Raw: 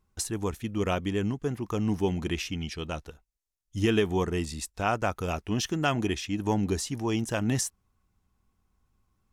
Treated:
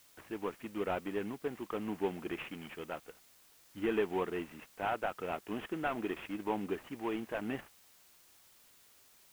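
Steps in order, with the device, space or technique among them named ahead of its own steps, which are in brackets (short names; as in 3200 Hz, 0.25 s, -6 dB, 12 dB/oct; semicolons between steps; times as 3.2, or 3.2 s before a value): army field radio (BPF 310–3100 Hz; CVSD 16 kbps; white noise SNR 24 dB); gain -4 dB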